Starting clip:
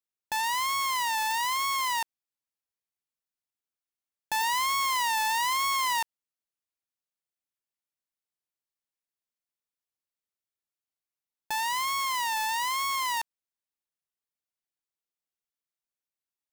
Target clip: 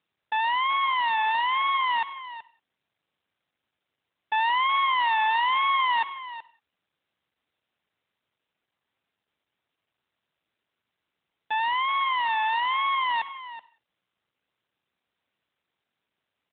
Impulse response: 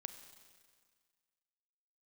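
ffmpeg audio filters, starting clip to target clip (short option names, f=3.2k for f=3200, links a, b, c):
-filter_complex "[0:a]aecho=1:1:377:0.2,asplit=2[a][b];[1:a]atrim=start_sample=2205,afade=t=out:st=0.24:d=0.01,atrim=end_sample=11025,highshelf=f=8.6k:g=-11[c];[b][c]afir=irnorm=-1:irlink=0,volume=2dB[d];[a][d]amix=inputs=2:normalize=0" -ar 8000 -c:a libopencore_amrnb -b:a 12200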